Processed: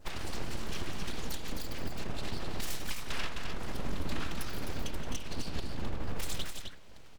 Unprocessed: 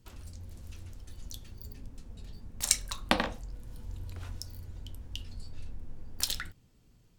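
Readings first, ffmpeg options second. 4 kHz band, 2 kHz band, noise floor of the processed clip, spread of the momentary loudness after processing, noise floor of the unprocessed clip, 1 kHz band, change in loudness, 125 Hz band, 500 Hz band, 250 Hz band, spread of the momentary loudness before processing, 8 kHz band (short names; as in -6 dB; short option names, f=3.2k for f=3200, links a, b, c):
-2.5 dB, -1.0 dB, -46 dBFS, 3 LU, -63 dBFS, -2.0 dB, -4.5 dB, +2.5 dB, +1.0 dB, +2.0 dB, 20 LU, -8.5 dB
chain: -filter_complex "[0:a]asplit=2[a][b];[b]acrusher=bits=6:dc=4:mix=0:aa=0.000001,volume=-4dB[c];[a][c]amix=inputs=2:normalize=0,afftfilt=real='hypot(re,im)*cos(2*PI*random(0))':imag='hypot(re,im)*sin(2*PI*random(1))':win_size=512:overlap=0.75,asplit=2[d][e];[e]highpass=f=720:p=1,volume=24dB,asoftclip=type=tanh:threshold=-8.5dB[f];[d][f]amix=inputs=2:normalize=0,lowpass=f=1.5k:p=1,volume=-6dB,bandreject=f=89.54:t=h:w=4,bandreject=f=179.08:t=h:w=4,bandreject=f=268.62:t=h:w=4,bandreject=f=358.16:t=h:w=4,bandreject=f=447.7:t=h:w=4,bandreject=f=537.24:t=h:w=4,aeval=exprs='abs(val(0))':c=same,acompressor=threshold=-41dB:ratio=2.5,adynamicequalizer=threshold=0.001:dfrequency=3300:dqfactor=0.71:tfrequency=3300:tqfactor=0.71:attack=5:release=100:ratio=0.375:range=2:mode=boostabove:tftype=bell,alimiter=level_in=9.5dB:limit=-24dB:level=0:latency=1:release=240,volume=-9.5dB,lowshelf=f=110:g=6.5,asplit=2[g][h];[h]aecho=0:1:172|259.5:0.282|0.501[i];[g][i]amix=inputs=2:normalize=0,volume=8dB"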